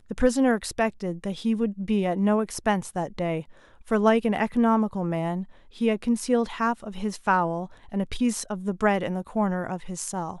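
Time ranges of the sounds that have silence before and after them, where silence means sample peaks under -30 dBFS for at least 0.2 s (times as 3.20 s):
3.91–5.43 s
5.81–7.65 s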